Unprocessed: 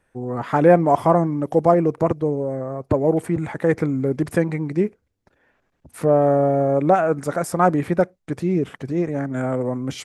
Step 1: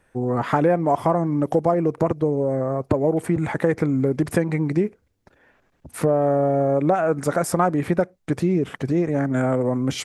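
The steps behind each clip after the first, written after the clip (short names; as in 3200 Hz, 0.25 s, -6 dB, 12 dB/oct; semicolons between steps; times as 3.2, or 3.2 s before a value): compressor 4:1, threshold -22 dBFS, peak gain reduction 12 dB; gain +5 dB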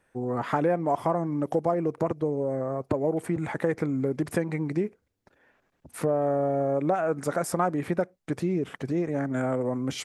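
low shelf 100 Hz -7.5 dB; gain -5.5 dB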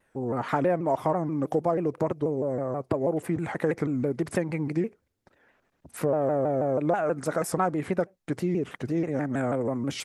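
shaped vibrato saw down 6.2 Hz, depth 160 cents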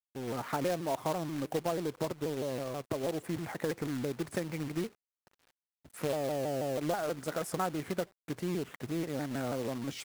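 companded quantiser 4-bit; gain -8 dB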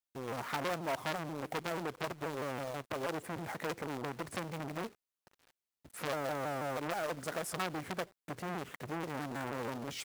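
core saturation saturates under 2000 Hz; gain +1 dB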